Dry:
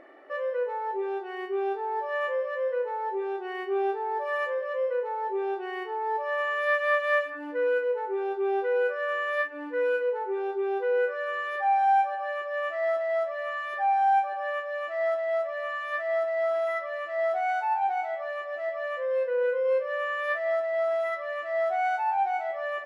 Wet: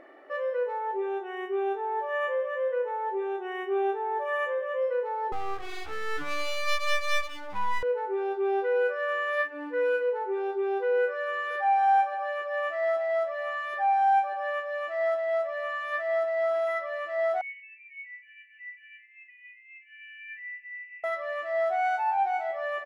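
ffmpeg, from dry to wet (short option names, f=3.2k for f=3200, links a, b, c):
-filter_complex "[0:a]asettb=1/sr,asplit=3[a][b][c];[a]atrim=end=0.794[d];[b]atrim=start=0.79:end=4.82,asetpts=PTS-STARTPTS,afade=t=in:d=0.004:c=qsin,afade=t=out:st=4.026:d=0.004:c=qsin,asuperstop=centerf=4600:order=8:qfactor=2.7[e];[c]atrim=start=4.816[f];[d][e]acrossfade=d=0.004:c1=hsin:c2=qsin[g];[g][f]acrossfade=d=0.004:c1=qsin:c2=hsin,asettb=1/sr,asplit=3[h][i][j];[h]atrim=end=5.324[k];[i]atrim=start=5.32:end=7.83,asetpts=PTS-STARTPTS,afade=t=in:d=0.004:c=qsin,afade=t=out:st=2.506:d=0.004:c=qsin,aeval=exprs='abs(val(0))':c=same[l];[j]atrim=start=7.826[m];[k][l]acrossfade=d=0.004:c1=hsin:c2=qsin[n];[n][m]acrossfade=d=0.004:c1=qsin:c2=hsin,asplit=2[o][p];[p]afade=t=in:st=11.06:d=0.01,afade=t=out:st=11.79:d=0.01,aecho=0:1:440|880|1320|1760|2200:0.158489|0.0871691|0.047943|0.0263687|0.0145028[q];[o][q]amix=inputs=2:normalize=0,asettb=1/sr,asplit=3[r][s][t];[r]atrim=end=17.414[u];[s]atrim=start=17.41:end=21.04,asetpts=PTS-STARTPTS,afade=t=in:d=0.004:c=qsin,afade=t=out:st=3.626:d=0.004:c=qsin,asuperpass=centerf=2300:order=20:qfactor=2.2[v];[t]atrim=start=21.036[w];[u][v]acrossfade=d=0.004:c1=hsin:c2=qsin[x];[x][w]acrossfade=d=0.004:c1=qsin:c2=hsin"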